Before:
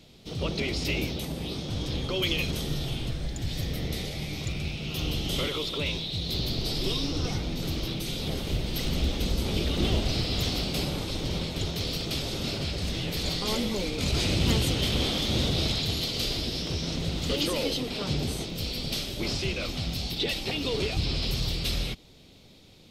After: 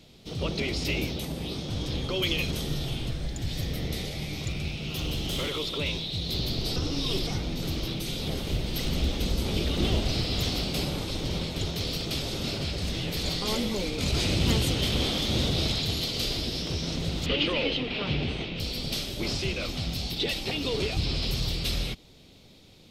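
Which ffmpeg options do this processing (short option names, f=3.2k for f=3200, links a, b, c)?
-filter_complex "[0:a]asettb=1/sr,asplit=3[a][b][c];[a]atrim=end=4.864[d];[b]atrim=start=4.86:end=5.59,asetpts=PTS-STARTPTS,afade=t=in:d=0.004:c=qsin,afade=t=out:st=0.726:d=0.004:c=qsin,asoftclip=type=hard:threshold=-25.5dB[e];[c]atrim=start=5.586[f];[d][e]acrossfade=d=0.004:c1=hsin:c2=qsin[g];[g][f]acrossfade=d=0.004:c1=qsin:c2=hsin,asettb=1/sr,asplit=3[h][i][j];[h]atrim=end=17.264[k];[i]atrim=start=17.26:end=18.6,asetpts=PTS-STARTPTS,afade=t=in:d=0.004:c=qsin,afade=t=out:st=1.336:d=0.004:c=qsin,lowpass=f=2.7k:t=q:w=2.4[l];[j]atrim=start=18.596[m];[k][l]acrossfade=d=0.004:c1=hsin:c2=qsin[n];[n][m]acrossfade=d=0.004:c1=qsin:c2=hsin,asplit=3[o][p][q];[o]atrim=end=6.762[r];[p]atrim=start=6.758:end=7.272,asetpts=PTS-STARTPTS,areverse[s];[q]atrim=start=7.268[t];[r][s]acrossfade=d=0.004:c1=hsin:c2=hsin[u];[u][t]acrossfade=d=0.004:c1=hsin:c2=hsin"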